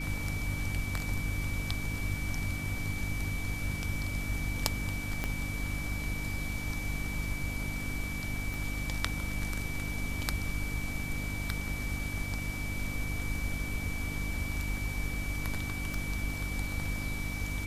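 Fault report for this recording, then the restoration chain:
mains hum 50 Hz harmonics 6 −38 dBFS
whistle 2,300 Hz −39 dBFS
0:05.24: click −17 dBFS
0:08.54: click
0:15.94: click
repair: click removal
notch filter 2,300 Hz, Q 30
hum removal 50 Hz, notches 6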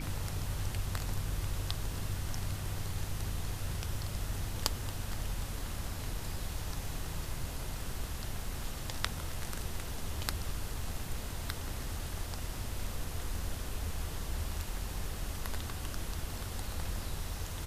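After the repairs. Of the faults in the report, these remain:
0:05.24: click

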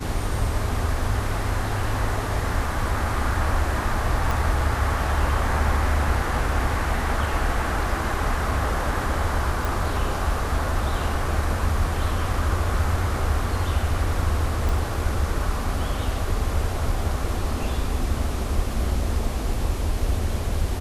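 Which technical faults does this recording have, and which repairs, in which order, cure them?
0:04.31: click
0:09.65: click
0:14.69: click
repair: click removal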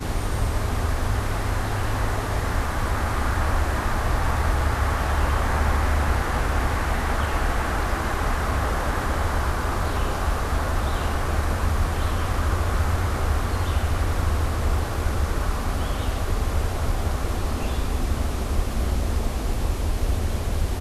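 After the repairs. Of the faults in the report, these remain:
0:04.31: click

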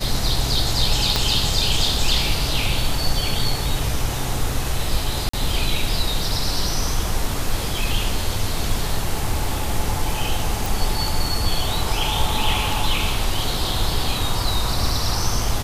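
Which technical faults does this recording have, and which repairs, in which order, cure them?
0:01.16: click −4 dBFS
0:05.29–0:05.33: drop-out 44 ms
0:10.66: click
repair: click removal
repair the gap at 0:05.29, 44 ms

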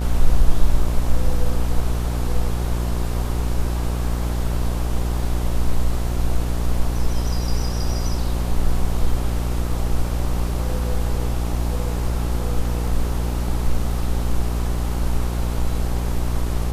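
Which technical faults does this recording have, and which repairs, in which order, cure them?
mains buzz 60 Hz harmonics 22 −23 dBFS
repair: hum removal 60 Hz, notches 22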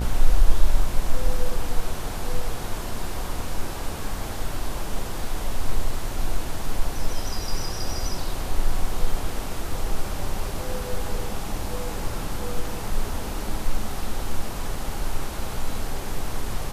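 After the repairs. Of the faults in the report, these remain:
none of them is left

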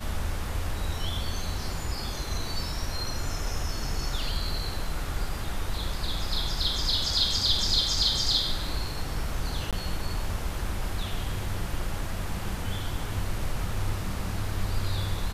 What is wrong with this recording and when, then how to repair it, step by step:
0:09.71–0:09.73: drop-out 17 ms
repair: repair the gap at 0:09.71, 17 ms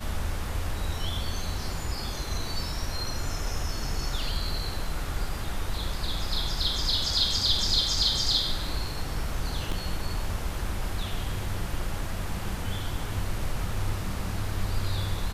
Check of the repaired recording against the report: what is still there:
none of them is left

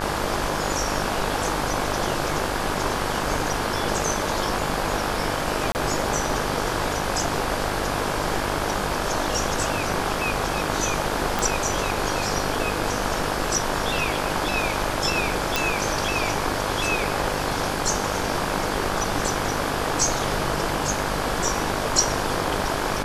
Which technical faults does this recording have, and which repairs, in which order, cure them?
mains buzz 50 Hz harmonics 34 −30 dBFS
0:05.72–0:05.75: drop-out 29 ms
0:11.39: click
0:15.56: click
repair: click removal
hum removal 50 Hz, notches 34
repair the gap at 0:05.72, 29 ms

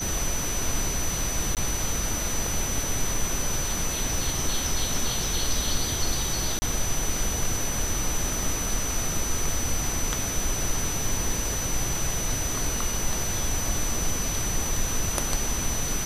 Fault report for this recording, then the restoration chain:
whistle 6,000 Hz −30 dBFS
0:01.55–0:01.57: drop-out 18 ms
0:06.59–0:06.62: drop-out 30 ms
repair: notch filter 6,000 Hz, Q 30
repair the gap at 0:01.55, 18 ms
repair the gap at 0:06.59, 30 ms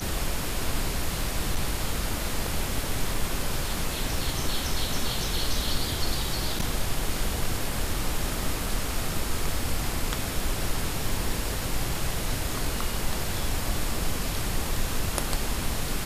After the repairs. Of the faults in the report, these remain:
none of them is left

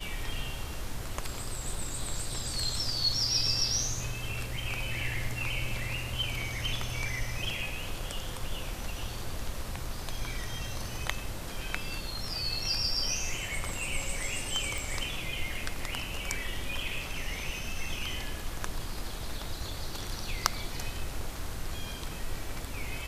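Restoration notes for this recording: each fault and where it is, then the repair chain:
0:14.78: click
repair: click removal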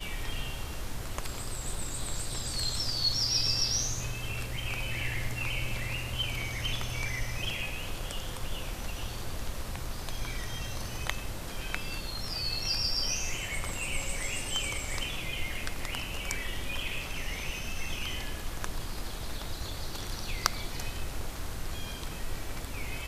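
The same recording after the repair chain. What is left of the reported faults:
none of them is left

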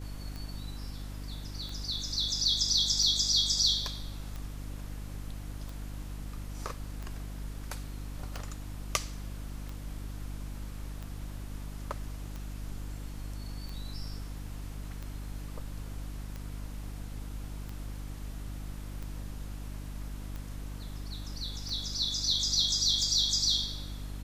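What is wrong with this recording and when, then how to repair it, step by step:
mains hum 50 Hz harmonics 6 −40 dBFS
scratch tick 45 rpm −27 dBFS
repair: click removal
hum removal 50 Hz, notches 6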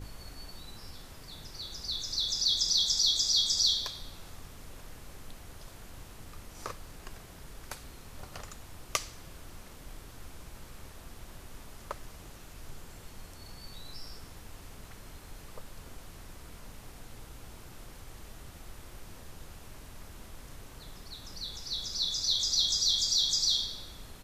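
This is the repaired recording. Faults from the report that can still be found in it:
none of them is left

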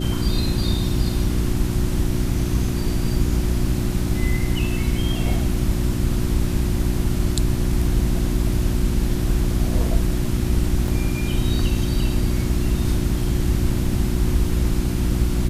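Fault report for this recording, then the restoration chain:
mains hum 60 Hz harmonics 6 −24 dBFS
0:10.88: drop-out 2.2 ms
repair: hum removal 60 Hz, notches 6
repair the gap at 0:10.88, 2.2 ms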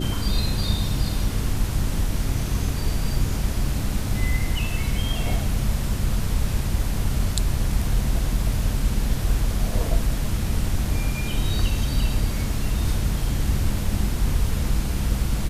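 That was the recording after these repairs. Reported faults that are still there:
none of them is left

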